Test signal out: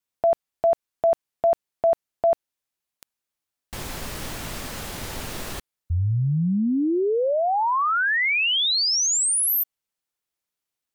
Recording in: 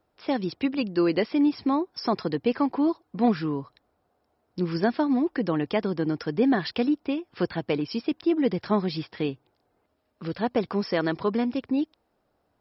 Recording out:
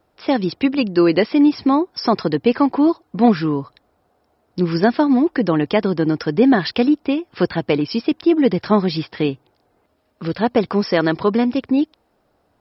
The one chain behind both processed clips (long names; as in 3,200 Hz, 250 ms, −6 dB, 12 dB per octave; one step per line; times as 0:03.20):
pitch vibrato 1.5 Hz 9.6 cents
level +8.5 dB